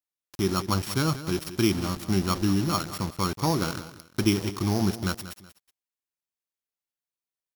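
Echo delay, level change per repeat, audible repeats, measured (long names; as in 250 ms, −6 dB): 186 ms, −10.5 dB, 2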